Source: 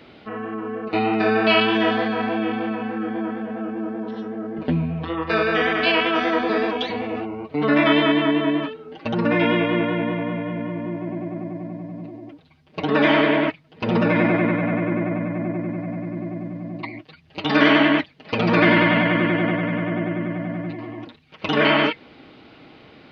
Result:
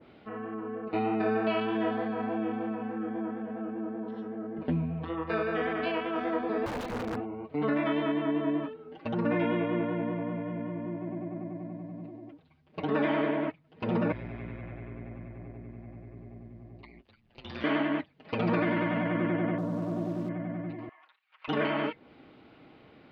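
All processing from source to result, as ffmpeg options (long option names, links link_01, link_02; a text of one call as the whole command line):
ffmpeg -i in.wav -filter_complex "[0:a]asettb=1/sr,asplit=3[link_01][link_02][link_03];[link_01]atrim=end=6.664[link_04];[link_02]atrim=start=6.66:end=7.21,asetpts=PTS-STARTPTS,afade=type=in:duration=0.004:curve=qsin,afade=type=out:start_time=0.546:duration=0.004:curve=qsin,lowshelf=frequency=430:gain=5,aeval=exprs='(mod(7.94*val(0)+1,2)-1)/7.94':channel_layout=same[link_05];[link_03]atrim=start=7.206[link_06];[link_04][link_05]acrossfade=duration=0.004:curve1=hsin:curve2=qsin[link_07];[link_07][link_06]acrossfade=duration=0.004:curve1=qsin:curve2=hsin,asettb=1/sr,asplit=3[link_08][link_09][link_10];[link_08]atrim=end=14.124[link_11];[link_09]atrim=start=14.12:end=17.64,asetpts=PTS-STARTPTS,afade=type=in:duration=0.004:curve=qsin,afade=type=out:start_time=3.516:duration=0.004:curve=qsin,aeval=exprs='val(0)*sin(2*PI*60*n/s)':channel_layout=same,acrossover=split=120|3000[link_12][link_13][link_14];[link_13]acompressor=threshold=-58dB:ratio=1.5:attack=3.2:release=140:knee=2.83:detection=peak[link_15];[link_12][link_15][link_14]amix=inputs=3:normalize=0[link_16];[link_10]atrim=start=17.636[link_17];[link_11][link_16]acrossfade=duration=0.004:curve1=hsin:curve2=qsin[link_18];[link_18][link_17]acrossfade=duration=0.004:curve1=qsin:curve2=hsin,asettb=1/sr,asplit=3[link_19][link_20][link_21];[link_19]atrim=end=19.584[link_22];[link_20]atrim=start=19.58:end=20.29,asetpts=PTS-STARTPTS,afade=type=in:duration=0.004:curve=qsin,afade=type=out:start_time=0.706:duration=0.004:curve=qsin,lowpass=frequency=1200:width=0.5412,lowpass=frequency=1200:width=1.3066,acrusher=bits=7:dc=4:mix=0:aa=0.000001[link_23];[link_21]atrim=start=20.286[link_24];[link_22][link_23]acrossfade=duration=0.004:curve1=hsin:curve2=qsin[link_25];[link_25][link_24]acrossfade=duration=0.004:curve1=qsin:curve2=hsin,asettb=1/sr,asplit=3[link_26][link_27][link_28];[link_26]atrim=end=20.894[link_29];[link_27]atrim=start=20.89:end=21.48,asetpts=PTS-STARTPTS,afade=type=in:duration=0.004:curve=qsin,afade=type=out:start_time=0.586:duration=0.004:curve=qsin,highpass=frequency=1100:width=0.5412,highpass=frequency=1100:width=1.3066,aemphasis=mode=reproduction:type=riaa[link_30];[link_28]atrim=start=21.476[link_31];[link_29][link_30]acrossfade=duration=0.004:curve1=hsin:curve2=qsin[link_32];[link_32][link_31]acrossfade=duration=0.004:curve1=qsin:curve2=hsin,lowpass=frequency=2100:poles=1,alimiter=limit=-10dB:level=0:latency=1:release=455,adynamicequalizer=threshold=0.0141:dfrequency=1500:dqfactor=0.7:tfrequency=1500:tqfactor=0.7:attack=5:release=100:ratio=0.375:range=3.5:mode=cutabove:tftype=highshelf,volume=-7.5dB" out.wav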